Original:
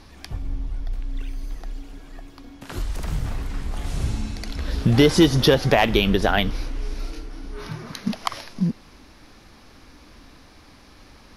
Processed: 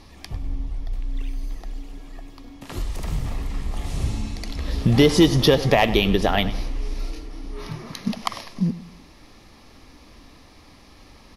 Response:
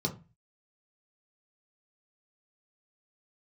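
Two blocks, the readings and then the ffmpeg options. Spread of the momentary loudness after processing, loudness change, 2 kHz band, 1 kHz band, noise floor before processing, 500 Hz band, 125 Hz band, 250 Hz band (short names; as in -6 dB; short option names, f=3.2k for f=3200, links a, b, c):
20 LU, 0.0 dB, -1.5 dB, 0.0 dB, -49 dBFS, 0.0 dB, 0.0 dB, 0.0 dB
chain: -filter_complex "[0:a]bandreject=f=1.5k:w=5.5,asplit=2[a][b];[b]adelay=99,lowpass=f=4.1k:p=1,volume=-15dB,asplit=2[c][d];[d]adelay=99,lowpass=f=4.1k:p=1,volume=0.43,asplit=2[e][f];[f]adelay=99,lowpass=f=4.1k:p=1,volume=0.43,asplit=2[g][h];[h]adelay=99,lowpass=f=4.1k:p=1,volume=0.43[i];[a][c][e][g][i]amix=inputs=5:normalize=0"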